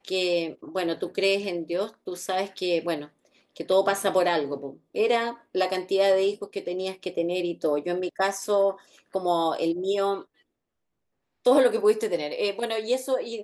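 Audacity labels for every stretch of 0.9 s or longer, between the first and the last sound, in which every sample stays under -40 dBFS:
10.220000	11.450000	silence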